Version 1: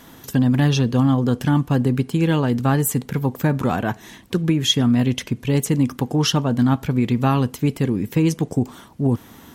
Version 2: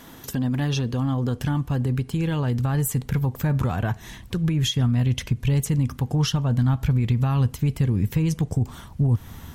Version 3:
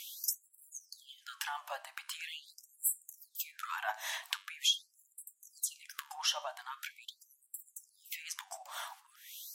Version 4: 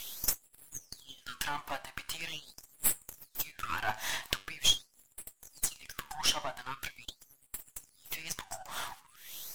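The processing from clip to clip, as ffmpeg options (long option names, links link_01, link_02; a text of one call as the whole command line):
ffmpeg -i in.wav -af "alimiter=limit=-16dB:level=0:latency=1:release=167,asubboost=boost=8.5:cutoff=98" out.wav
ffmpeg -i in.wav -af "acompressor=threshold=-28dB:ratio=6,flanger=delay=9.1:depth=5.1:regen=83:speed=0.25:shape=triangular,afftfilt=real='re*gte(b*sr/1024,550*pow(7400/550,0.5+0.5*sin(2*PI*0.43*pts/sr)))':imag='im*gte(b*sr/1024,550*pow(7400/550,0.5+0.5*sin(2*PI*0.43*pts/sr)))':win_size=1024:overlap=0.75,volume=9dB" out.wav
ffmpeg -i in.wav -af "aeval=exprs='if(lt(val(0),0),0.251*val(0),val(0))':channel_layout=same,volume=7dB" out.wav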